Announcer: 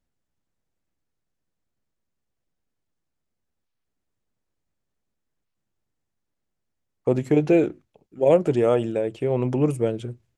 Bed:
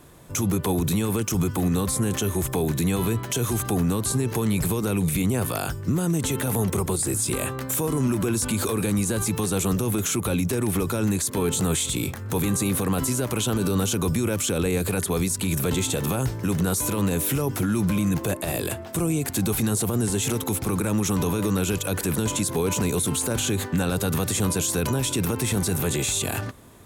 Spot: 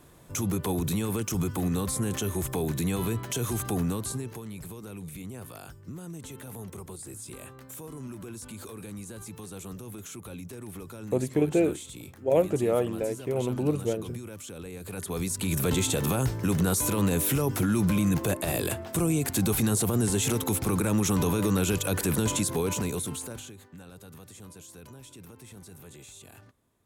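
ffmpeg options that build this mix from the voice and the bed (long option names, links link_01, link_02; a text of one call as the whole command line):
ffmpeg -i stem1.wav -i stem2.wav -filter_complex "[0:a]adelay=4050,volume=-5.5dB[link_01];[1:a]volume=10.5dB,afade=type=out:start_time=3.83:duration=0.6:silence=0.251189,afade=type=in:start_time=14.8:duration=0.91:silence=0.16788,afade=type=out:start_time=22.29:duration=1.25:silence=0.0794328[link_02];[link_01][link_02]amix=inputs=2:normalize=0" out.wav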